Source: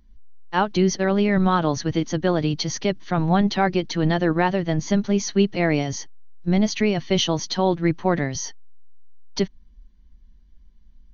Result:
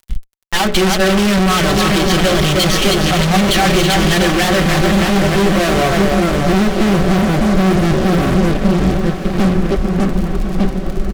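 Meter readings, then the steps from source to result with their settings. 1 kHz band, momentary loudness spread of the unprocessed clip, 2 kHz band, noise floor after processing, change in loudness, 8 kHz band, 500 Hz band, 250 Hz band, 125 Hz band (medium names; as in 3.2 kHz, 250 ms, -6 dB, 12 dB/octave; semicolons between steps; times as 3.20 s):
+8.5 dB, 8 LU, +12.0 dB, -22 dBFS, +8.5 dB, no reading, +8.0 dB, +8.5 dB, +9.5 dB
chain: low-pass sweep 3.2 kHz -> 250 Hz, 3.96–7.10 s; hum notches 60/120/180/240/300/360/420 Hz; two-band feedback delay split 340 Hz, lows 600 ms, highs 310 ms, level -9.5 dB; crackle 120 per s -49 dBFS; fuzz box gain 44 dB, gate -47 dBFS; resonant low shelf 100 Hz +6.5 dB, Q 1.5; band-stop 920 Hz, Q 9.2; comb 5.3 ms, depth 42%; echo that smears into a reverb 1211 ms, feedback 44%, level -9.5 dB; loudspeaker Doppler distortion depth 0.18 ms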